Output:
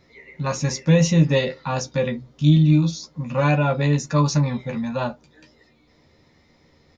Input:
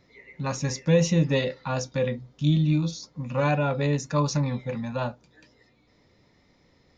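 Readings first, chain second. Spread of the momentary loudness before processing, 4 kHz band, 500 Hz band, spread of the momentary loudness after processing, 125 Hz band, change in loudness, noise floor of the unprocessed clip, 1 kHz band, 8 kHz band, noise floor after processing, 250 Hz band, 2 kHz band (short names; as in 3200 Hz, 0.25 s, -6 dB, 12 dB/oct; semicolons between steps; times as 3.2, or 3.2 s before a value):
10 LU, +4.5 dB, +3.0 dB, 11 LU, +6.0 dB, +5.0 dB, -63 dBFS, +4.0 dB, n/a, -58 dBFS, +6.0 dB, +4.5 dB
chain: doubler 13 ms -6 dB; gain +3.5 dB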